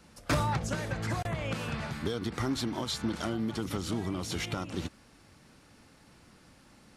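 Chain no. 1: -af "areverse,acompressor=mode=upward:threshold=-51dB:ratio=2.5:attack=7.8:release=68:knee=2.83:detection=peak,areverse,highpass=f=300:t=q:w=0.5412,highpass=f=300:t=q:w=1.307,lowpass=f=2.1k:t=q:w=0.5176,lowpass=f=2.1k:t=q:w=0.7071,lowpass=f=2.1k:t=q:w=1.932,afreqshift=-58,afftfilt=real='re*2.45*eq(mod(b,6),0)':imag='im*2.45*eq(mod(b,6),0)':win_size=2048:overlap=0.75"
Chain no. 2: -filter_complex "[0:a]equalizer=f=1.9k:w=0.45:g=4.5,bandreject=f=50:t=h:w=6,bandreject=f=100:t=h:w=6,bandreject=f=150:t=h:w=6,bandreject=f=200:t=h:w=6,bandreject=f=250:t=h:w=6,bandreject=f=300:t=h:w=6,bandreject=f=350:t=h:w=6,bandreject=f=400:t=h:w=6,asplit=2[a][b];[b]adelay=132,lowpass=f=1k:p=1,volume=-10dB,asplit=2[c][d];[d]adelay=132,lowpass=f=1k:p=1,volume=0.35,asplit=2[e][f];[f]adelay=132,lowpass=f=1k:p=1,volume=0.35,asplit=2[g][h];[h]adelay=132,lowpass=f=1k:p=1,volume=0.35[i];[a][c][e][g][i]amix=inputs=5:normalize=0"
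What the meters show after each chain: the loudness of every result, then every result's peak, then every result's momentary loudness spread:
-41.0, -32.0 LUFS; -23.0, -17.0 dBFS; 6, 5 LU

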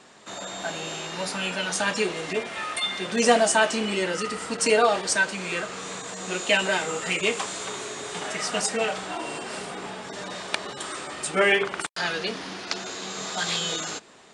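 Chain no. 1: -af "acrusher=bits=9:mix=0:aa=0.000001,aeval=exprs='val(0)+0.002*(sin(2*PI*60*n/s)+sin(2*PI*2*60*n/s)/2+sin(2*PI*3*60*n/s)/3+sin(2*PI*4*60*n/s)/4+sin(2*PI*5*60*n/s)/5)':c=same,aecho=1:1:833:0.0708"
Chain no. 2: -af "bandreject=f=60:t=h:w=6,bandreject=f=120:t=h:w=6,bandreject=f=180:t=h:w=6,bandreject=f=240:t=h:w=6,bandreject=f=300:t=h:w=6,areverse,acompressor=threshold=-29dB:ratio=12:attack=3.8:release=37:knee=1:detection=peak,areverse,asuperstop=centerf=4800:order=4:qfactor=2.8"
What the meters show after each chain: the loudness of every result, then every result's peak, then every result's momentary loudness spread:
-26.0, -32.0 LUFS; -5.0, -17.0 dBFS; 13, 4 LU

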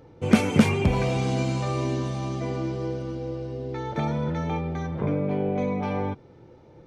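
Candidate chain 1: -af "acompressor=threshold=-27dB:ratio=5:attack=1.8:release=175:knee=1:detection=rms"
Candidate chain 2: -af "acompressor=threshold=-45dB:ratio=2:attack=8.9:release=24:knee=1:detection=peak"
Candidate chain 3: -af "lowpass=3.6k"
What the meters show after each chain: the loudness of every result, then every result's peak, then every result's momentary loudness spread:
-33.0, -37.0, -26.5 LUFS; -18.0, -19.0, -5.0 dBFS; 3, 5, 11 LU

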